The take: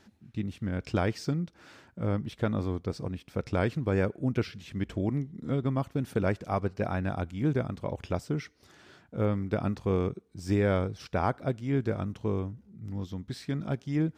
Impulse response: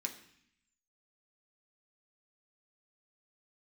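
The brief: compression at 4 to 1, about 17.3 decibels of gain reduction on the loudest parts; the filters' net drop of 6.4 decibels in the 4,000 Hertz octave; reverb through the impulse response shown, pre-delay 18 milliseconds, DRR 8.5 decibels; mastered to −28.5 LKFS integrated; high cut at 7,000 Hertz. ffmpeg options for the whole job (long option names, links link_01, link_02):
-filter_complex "[0:a]lowpass=7000,equalizer=frequency=4000:width_type=o:gain=-8,acompressor=threshold=-44dB:ratio=4,asplit=2[link_01][link_02];[1:a]atrim=start_sample=2205,adelay=18[link_03];[link_02][link_03]afir=irnorm=-1:irlink=0,volume=-8dB[link_04];[link_01][link_04]amix=inputs=2:normalize=0,volume=17.5dB"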